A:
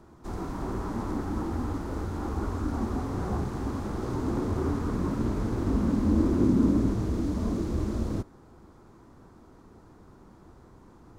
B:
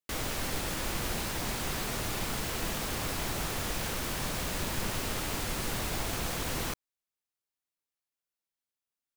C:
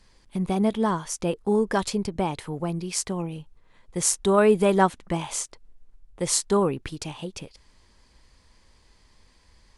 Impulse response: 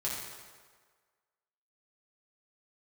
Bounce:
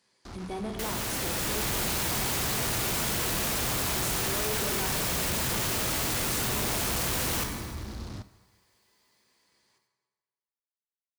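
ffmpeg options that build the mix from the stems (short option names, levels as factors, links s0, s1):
-filter_complex "[0:a]lowpass=f=4600:t=q:w=2.2,equalizer=f=460:w=0.64:g=-9.5,acrusher=bits=5:mix=0:aa=0.5,volume=0.501,asplit=2[s0][s1];[s1]volume=0.112[s2];[1:a]dynaudnorm=f=140:g=11:m=3.35,adelay=700,volume=1.19,asplit=2[s3][s4];[s4]volume=0.237[s5];[2:a]highpass=220,volume=0.237,asplit=2[s6][s7];[s7]volume=0.631[s8];[3:a]atrim=start_sample=2205[s9];[s2][s5][s8]amix=inputs=3:normalize=0[s10];[s10][s9]afir=irnorm=-1:irlink=0[s11];[s0][s3][s6][s11]amix=inputs=4:normalize=0,highpass=41,highshelf=f=5800:g=4.5,asoftclip=type=tanh:threshold=0.0422"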